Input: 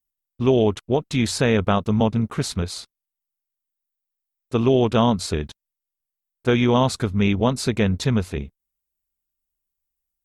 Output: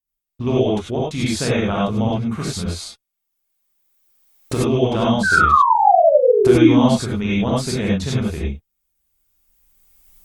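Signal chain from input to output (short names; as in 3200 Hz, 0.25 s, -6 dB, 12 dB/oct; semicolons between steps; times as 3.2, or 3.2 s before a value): recorder AGC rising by 16 dB/s; painted sound fall, 5.23–6.87, 230–1600 Hz -13 dBFS; non-linear reverb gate 0.12 s rising, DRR -5 dB; gain -6 dB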